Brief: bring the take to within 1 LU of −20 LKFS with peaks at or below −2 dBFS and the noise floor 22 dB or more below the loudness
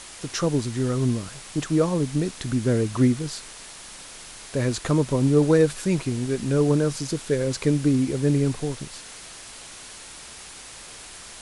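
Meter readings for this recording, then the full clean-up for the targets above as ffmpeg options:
background noise floor −42 dBFS; target noise floor −46 dBFS; integrated loudness −23.5 LKFS; sample peak −7.5 dBFS; target loudness −20.0 LKFS
→ -af "afftdn=noise_reduction=6:noise_floor=-42"
-af "volume=3.5dB"

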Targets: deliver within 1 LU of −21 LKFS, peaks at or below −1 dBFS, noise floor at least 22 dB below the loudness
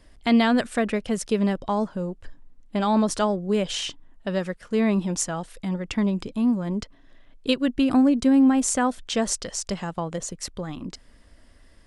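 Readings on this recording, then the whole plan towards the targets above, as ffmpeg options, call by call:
integrated loudness −24.0 LKFS; sample peak −7.0 dBFS; target loudness −21.0 LKFS
→ -af "volume=3dB"

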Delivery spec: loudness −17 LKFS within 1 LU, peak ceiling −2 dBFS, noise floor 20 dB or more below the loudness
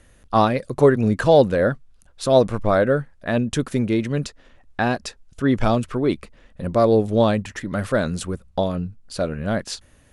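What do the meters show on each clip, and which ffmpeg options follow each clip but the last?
integrated loudness −21.0 LKFS; sample peak −3.5 dBFS; target loudness −17.0 LKFS
→ -af "volume=4dB,alimiter=limit=-2dB:level=0:latency=1"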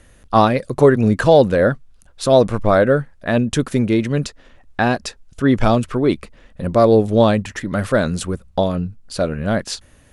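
integrated loudness −17.5 LKFS; sample peak −2.0 dBFS; background noise floor −50 dBFS

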